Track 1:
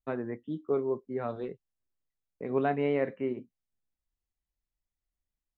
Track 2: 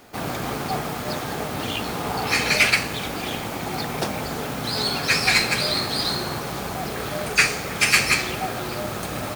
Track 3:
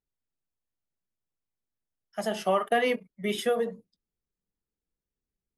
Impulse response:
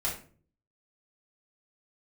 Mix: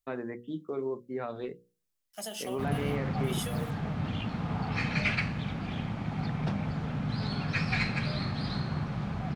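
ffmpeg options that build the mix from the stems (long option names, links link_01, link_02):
-filter_complex "[0:a]highshelf=frequency=2400:gain=8.5,bandreject=frequency=49.89:width_type=h:width=4,bandreject=frequency=99.78:width_type=h:width=4,bandreject=frequency=149.67:width_type=h:width=4,bandreject=frequency=199.56:width_type=h:width=4,volume=0dB[link_01];[1:a]lowpass=3000,lowshelf=frequency=260:width_type=q:width=1.5:gain=11,adelay=2450,volume=-10.5dB[link_02];[2:a]acompressor=threshold=-27dB:ratio=6,acrusher=bits=8:mix=0:aa=0.5,aexciter=amount=3.5:drive=4.7:freq=2500,volume=-9dB[link_03];[link_01][link_03]amix=inputs=2:normalize=0,bandreject=frequency=50:width_type=h:width=6,bandreject=frequency=100:width_type=h:width=6,bandreject=frequency=150:width_type=h:width=6,alimiter=level_in=1dB:limit=-24dB:level=0:latency=1:release=67,volume=-1dB,volume=0dB[link_04];[link_02][link_04]amix=inputs=2:normalize=0,bandreject=frequency=60:width_type=h:width=6,bandreject=frequency=120:width_type=h:width=6,bandreject=frequency=180:width_type=h:width=6,bandreject=frequency=240:width_type=h:width=6,bandreject=frequency=300:width_type=h:width=6,bandreject=frequency=360:width_type=h:width=6,bandreject=frequency=420:width_type=h:width=6,bandreject=frequency=480:width_type=h:width=6,bandreject=frequency=540:width_type=h:width=6"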